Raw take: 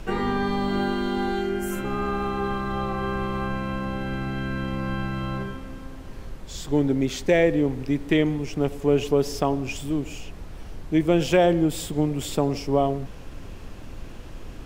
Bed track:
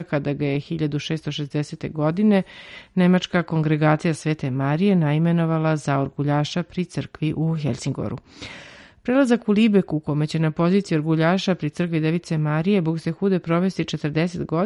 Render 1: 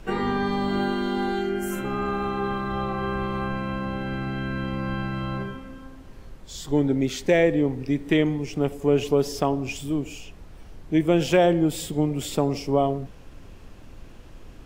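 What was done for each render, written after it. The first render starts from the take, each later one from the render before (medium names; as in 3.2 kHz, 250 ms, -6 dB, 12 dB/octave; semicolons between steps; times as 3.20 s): noise print and reduce 6 dB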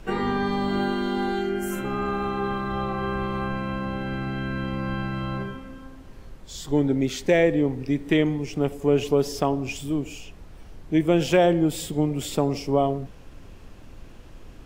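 no audible change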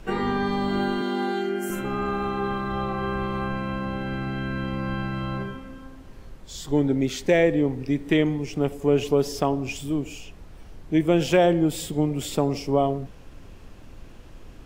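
1.01–1.70 s: high-pass 190 Hz 24 dB/octave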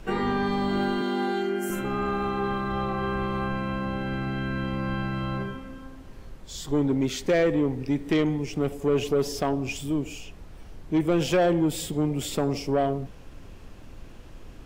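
saturation -15.5 dBFS, distortion -14 dB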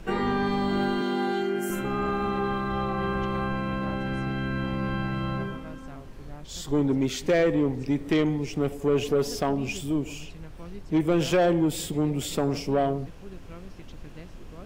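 add bed track -24.5 dB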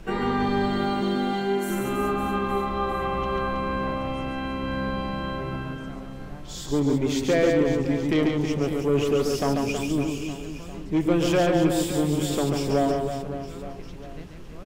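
reverse bouncing-ball echo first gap 140 ms, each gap 1.3×, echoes 5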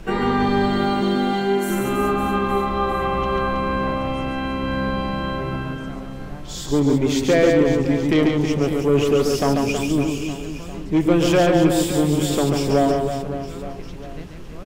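trim +5 dB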